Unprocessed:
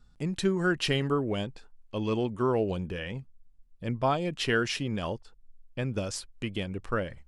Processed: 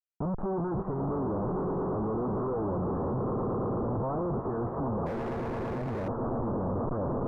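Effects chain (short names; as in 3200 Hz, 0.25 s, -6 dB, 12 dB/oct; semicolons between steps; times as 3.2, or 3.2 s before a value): moving spectral ripple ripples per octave 1.4, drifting +0.78 Hz, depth 6 dB; 2.98–4.42 notch comb 200 Hz; on a send: swelling echo 0.113 s, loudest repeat 8, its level -16 dB; on the sum: Schmitt trigger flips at -40 dBFS; steep low-pass 1200 Hz 48 dB/oct; 5.06–6.08 hard clip -31.5 dBFS, distortion -19 dB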